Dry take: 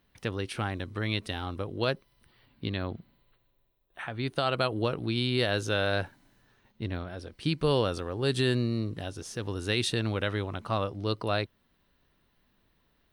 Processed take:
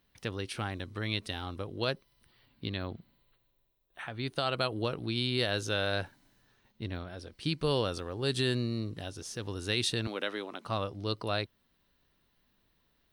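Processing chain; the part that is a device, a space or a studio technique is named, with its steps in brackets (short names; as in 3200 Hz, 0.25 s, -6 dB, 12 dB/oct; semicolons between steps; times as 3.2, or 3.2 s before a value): 10.07–10.65 HPF 230 Hz 24 dB/oct; presence and air boost (bell 4800 Hz +4 dB 1.4 oct; high shelf 9400 Hz +4.5 dB); gain -4 dB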